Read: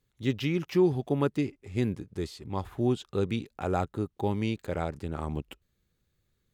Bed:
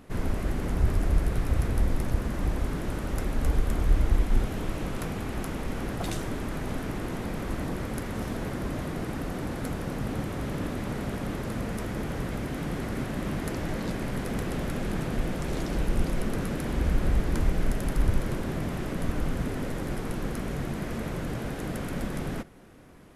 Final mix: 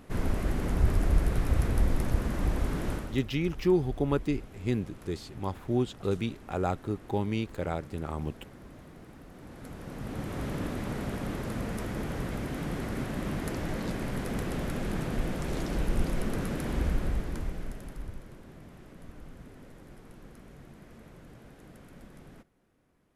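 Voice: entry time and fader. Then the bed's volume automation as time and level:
2.90 s, −1.0 dB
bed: 0:02.93 −0.5 dB
0:03.29 −17 dB
0:09.29 −17 dB
0:10.39 −2 dB
0:16.79 −2 dB
0:18.28 −18.5 dB

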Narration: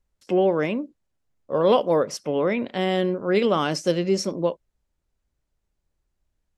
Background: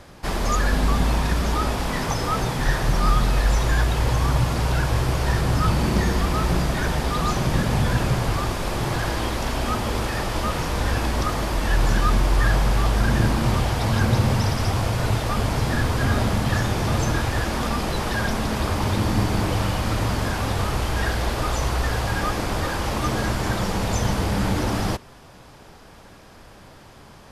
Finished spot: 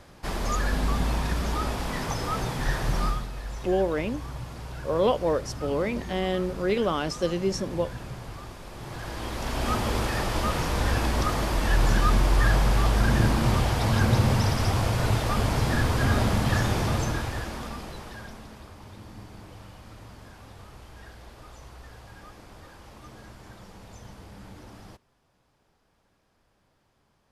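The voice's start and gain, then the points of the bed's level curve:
3.35 s, −4.5 dB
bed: 0:03.03 −5.5 dB
0:03.29 −16.5 dB
0:08.71 −16.5 dB
0:09.71 −2 dB
0:16.76 −2 dB
0:18.73 −23 dB

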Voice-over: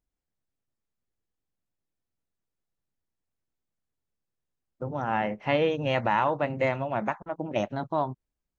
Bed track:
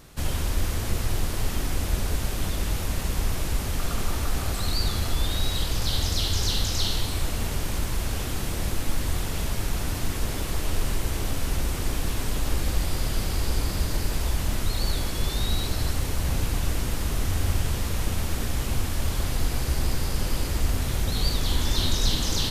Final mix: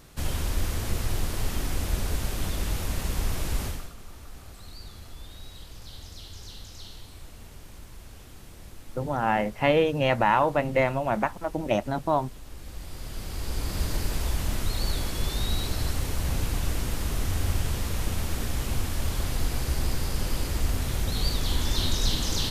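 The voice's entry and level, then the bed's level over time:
4.15 s, +3.0 dB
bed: 0:03.66 −2 dB
0:03.94 −18 dB
0:12.48 −18 dB
0:13.83 −2 dB

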